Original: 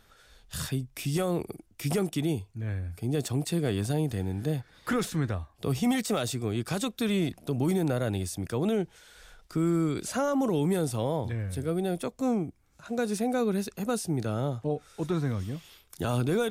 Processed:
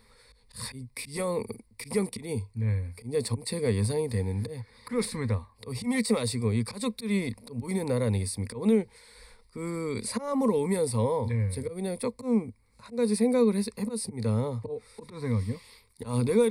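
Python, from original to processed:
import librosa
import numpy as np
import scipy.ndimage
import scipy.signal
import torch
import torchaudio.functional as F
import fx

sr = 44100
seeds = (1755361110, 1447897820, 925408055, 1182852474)

y = fx.auto_swell(x, sr, attack_ms=150.0)
y = fx.ripple_eq(y, sr, per_octave=0.93, db=16)
y = y * 10.0 ** (-1.5 / 20.0)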